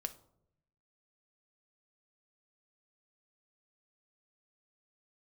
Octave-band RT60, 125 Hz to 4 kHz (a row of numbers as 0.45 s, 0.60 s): 1.2 s, 1.0 s, 0.85 s, 0.65 s, 0.40 s, 0.35 s